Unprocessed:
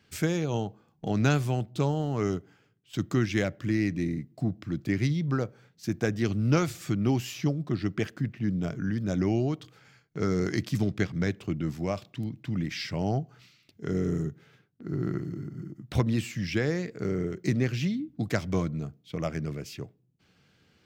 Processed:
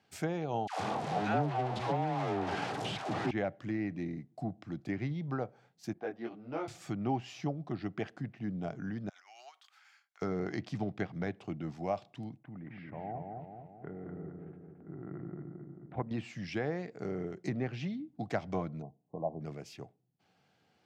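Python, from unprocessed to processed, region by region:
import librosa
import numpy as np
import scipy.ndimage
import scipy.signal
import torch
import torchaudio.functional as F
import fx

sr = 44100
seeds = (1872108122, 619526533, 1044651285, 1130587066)

y = fx.chain(x, sr, fx.delta_mod(bps=64000, step_db=-23.5),
    fx.dispersion(late='lows', ms=134.0, hz=610.0), at=(0.67, 3.31))
y = fx.chain(y, sr, fx.highpass(hz=280.0, slope=12),
    fx.air_absorb(metres=310.0),
    fx.detune_double(cents=14), at=(5.93, 6.68))
y = fx.chain(y, sr, fx.median_filter(points=3),
    fx.highpass(hz=1200.0, slope=24),
    fx.over_compress(threshold_db=-53.0, ratio=-1.0), at=(9.09, 10.22))
y = fx.chain(y, sr, fx.lowpass(hz=2100.0, slope=24),
    fx.level_steps(step_db=12),
    fx.echo_filtered(ms=220, feedback_pct=58, hz=1600.0, wet_db=-3), at=(12.37, 16.11))
y = fx.chain(y, sr, fx.brickwall_lowpass(high_hz=1100.0),
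    fx.low_shelf(hz=73.0, db=-11.0), at=(18.82, 19.41))
y = fx.env_lowpass_down(y, sr, base_hz=2400.0, full_db=-21.5)
y = scipy.signal.sosfilt(scipy.signal.butter(2, 110.0, 'highpass', fs=sr, output='sos'), y)
y = fx.peak_eq(y, sr, hz=760.0, db=13.5, octaves=0.66)
y = F.gain(torch.from_numpy(y), -8.5).numpy()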